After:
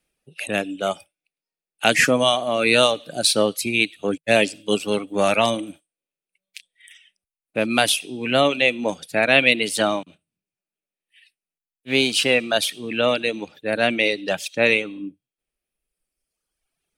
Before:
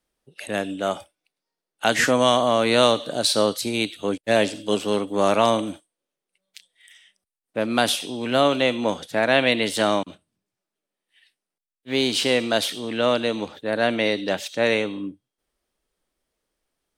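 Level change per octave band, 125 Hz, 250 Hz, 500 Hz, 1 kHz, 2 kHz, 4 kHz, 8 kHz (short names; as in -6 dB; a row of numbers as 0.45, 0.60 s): 0.0, -0.5, 0.0, -1.0, +5.0, +2.5, +3.5 dB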